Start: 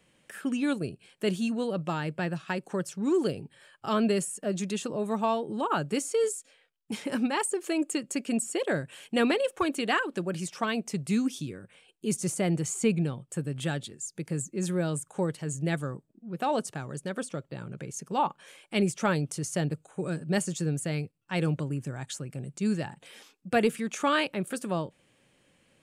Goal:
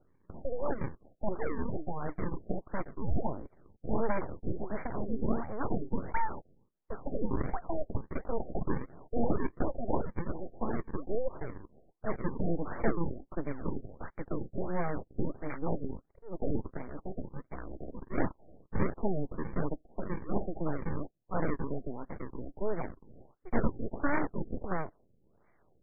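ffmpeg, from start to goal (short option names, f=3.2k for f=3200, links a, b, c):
-filter_complex "[0:a]asettb=1/sr,asplit=3[a][b][c];[a]atrim=end=16.834[d];[b]atrim=start=16.83:end=17.46,asetpts=PTS-STARTPTS,afade=t=in:d=0.004:c=qsin,afade=t=out:st=0.626:d=0.004:c=qsin,equalizer=f=690:t=o:w=2.7:g=-3.5[e];[c]atrim=start=17.456[f];[d][e]acrossfade=d=0.004:c1=hsin:c2=qsin[g];[g][f]acrossfade=d=0.004:c1=qsin:c2=hsin,acrusher=samples=37:mix=1:aa=0.000001:lfo=1:lforange=59.2:lforate=1.4,aeval=exprs='abs(val(0))':c=same,afftfilt=real='re*lt(b*sr/1024,750*pow(2400/750,0.5+0.5*sin(2*PI*1.5*pts/sr)))':imag='im*lt(b*sr/1024,750*pow(2400/750,0.5+0.5*sin(2*PI*1.5*pts/sr)))':win_size=1024:overlap=0.75"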